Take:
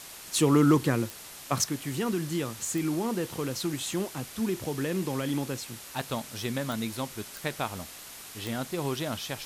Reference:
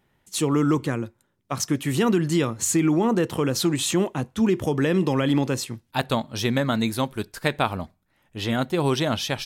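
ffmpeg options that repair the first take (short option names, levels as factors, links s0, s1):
-af "adeclick=t=4,afwtdn=0.0071,asetnsamples=n=441:p=0,asendcmd='1.69 volume volume 9dB',volume=1"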